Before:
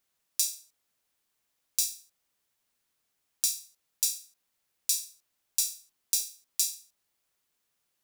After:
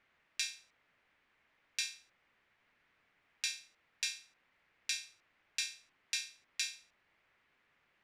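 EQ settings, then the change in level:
low-pass with resonance 2,100 Hz, resonance Q 2.2
+8.5 dB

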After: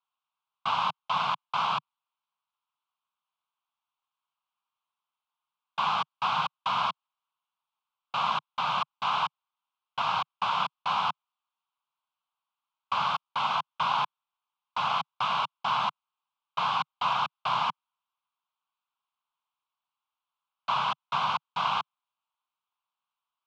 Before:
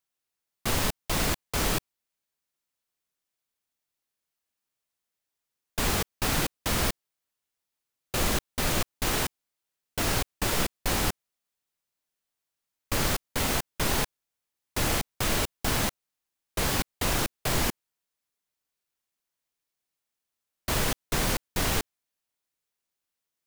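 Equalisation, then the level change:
elliptic band-pass filter 150–3,100 Hz, stop band 60 dB
low shelf with overshoot 730 Hz −12.5 dB, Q 3
phaser with its sweep stopped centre 770 Hz, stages 4
+6.5 dB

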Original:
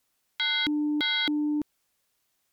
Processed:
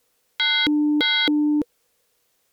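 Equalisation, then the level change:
parametric band 480 Hz +14.5 dB 0.3 octaves
+6.5 dB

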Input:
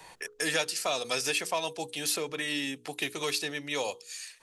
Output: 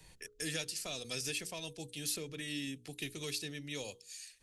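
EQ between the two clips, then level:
guitar amp tone stack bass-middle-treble 10-0-1
+14.0 dB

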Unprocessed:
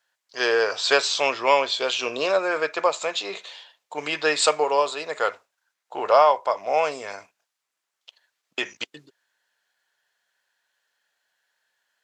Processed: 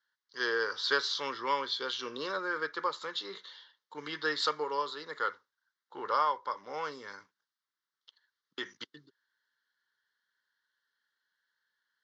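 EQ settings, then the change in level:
band-pass filter 120–7,400 Hz
high-shelf EQ 5,600 Hz −4.5 dB
phaser with its sweep stopped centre 2,500 Hz, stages 6
−5.5 dB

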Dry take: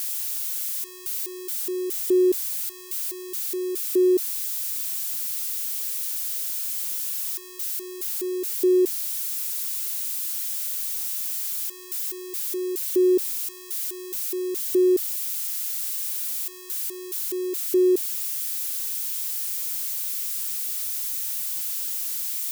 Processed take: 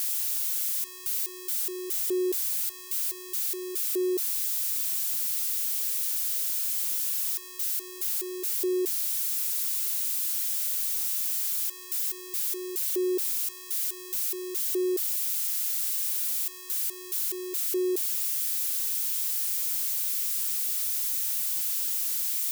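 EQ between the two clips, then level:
high-pass filter 580 Hz 12 dB per octave
0.0 dB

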